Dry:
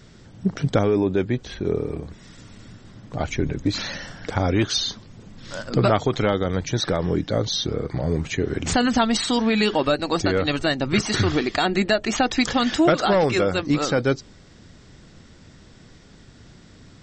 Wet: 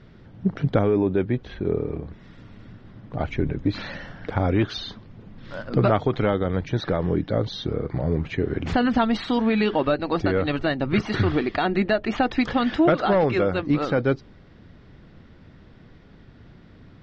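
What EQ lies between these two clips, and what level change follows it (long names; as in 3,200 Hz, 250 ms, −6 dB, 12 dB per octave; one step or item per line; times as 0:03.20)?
high-frequency loss of the air 320 metres
0.0 dB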